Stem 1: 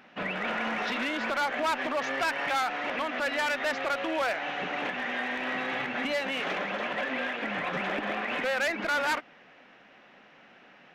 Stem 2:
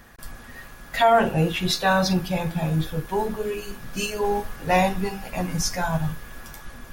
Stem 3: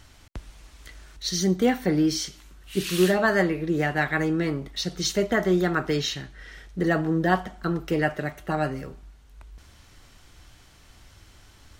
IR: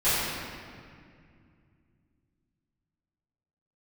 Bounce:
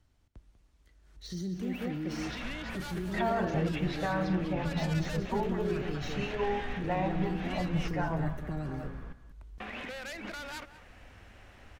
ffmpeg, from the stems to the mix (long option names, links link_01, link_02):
-filter_complex "[0:a]acompressor=threshold=-30dB:ratio=6,adelay=1450,volume=-2.5dB,asplit=3[link_01][link_02][link_03];[link_01]atrim=end=7.88,asetpts=PTS-STARTPTS,afade=type=out:start_time=7.876:duration=0.004:curve=hsin[link_04];[link_02]atrim=start=7.88:end=9.6,asetpts=PTS-STARTPTS,volume=0[link_05];[link_03]atrim=start=9.6,asetpts=PTS-STARTPTS,afade=type=in:duration=0.004:curve=hsin[link_06];[link_04][link_05][link_06]concat=n=3:v=0:a=1,asplit=2[link_07][link_08];[link_08]volume=-22dB[link_09];[1:a]lowpass=1900,alimiter=limit=-17.5dB:level=0:latency=1:release=160,aeval=exprs='val(0)+0.01*(sin(2*PI*60*n/s)+sin(2*PI*2*60*n/s)/2+sin(2*PI*3*60*n/s)/3+sin(2*PI*4*60*n/s)/4+sin(2*PI*5*60*n/s)/5)':channel_layout=same,adelay=2200,volume=-5.5dB,asplit=2[link_10][link_11];[link_11]volume=-12.5dB[link_12];[2:a]deesser=0.7,tiltshelf=frequency=740:gain=5,volume=-7.5dB,afade=type=in:start_time=1.02:duration=0.28:silence=0.237137,asplit=2[link_13][link_14];[link_14]volume=-12.5dB[link_15];[link_07][link_13]amix=inputs=2:normalize=0,acrossover=split=310|3000[link_16][link_17][link_18];[link_17]acompressor=threshold=-42dB:ratio=6[link_19];[link_16][link_19][link_18]amix=inputs=3:normalize=0,alimiter=level_in=5.5dB:limit=-24dB:level=0:latency=1:release=32,volume=-5.5dB,volume=0dB[link_20];[link_09][link_12][link_15]amix=inputs=3:normalize=0,aecho=0:1:195:1[link_21];[link_10][link_20][link_21]amix=inputs=3:normalize=0"